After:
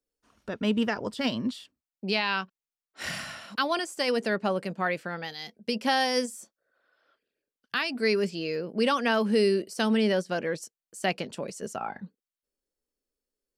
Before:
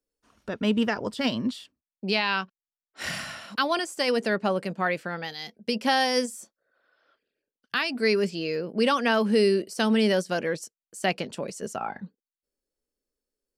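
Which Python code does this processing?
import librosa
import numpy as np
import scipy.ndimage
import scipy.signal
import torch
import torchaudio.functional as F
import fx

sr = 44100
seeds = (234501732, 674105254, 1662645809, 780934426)

y = fx.high_shelf(x, sr, hz=5900.0, db=-8.0, at=(9.97, 10.53))
y = y * librosa.db_to_amplitude(-2.0)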